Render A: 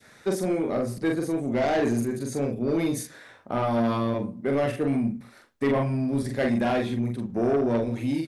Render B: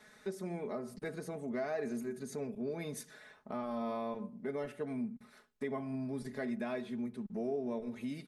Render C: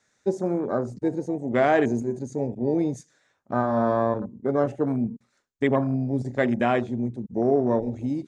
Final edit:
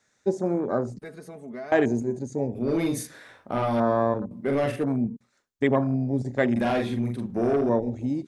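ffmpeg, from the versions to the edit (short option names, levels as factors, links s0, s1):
-filter_complex "[0:a]asplit=3[s0][s1][s2];[2:a]asplit=5[s3][s4][s5][s6][s7];[s3]atrim=end=0.992[s8];[1:a]atrim=start=0.988:end=1.722[s9];[s4]atrim=start=1.718:end=2.552[s10];[s0]atrim=start=2.548:end=3.802[s11];[s5]atrim=start=3.798:end=4.312[s12];[s1]atrim=start=4.308:end=4.842[s13];[s6]atrim=start=4.838:end=6.562[s14];[s2]atrim=start=6.558:end=7.692[s15];[s7]atrim=start=7.688[s16];[s8][s9]acrossfade=d=0.004:c1=hsin:c2=hsin[s17];[s17][s10]acrossfade=d=0.004:c1=hsin:c2=hsin[s18];[s18][s11]acrossfade=d=0.004:c1=hsin:c2=hsin[s19];[s19][s12]acrossfade=d=0.004:c1=hsin:c2=hsin[s20];[s20][s13]acrossfade=d=0.004:c1=hsin:c2=hsin[s21];[s21][s14]acrossfade=d=0.004:c1=hsin:c2=hsin[s22];[s22][s15]acrossfade=d=0.004:c1=hsin:c2=hsin[s23];[s23][s16]acrossfade=d=0.004:c1=hsin:c2=hsin"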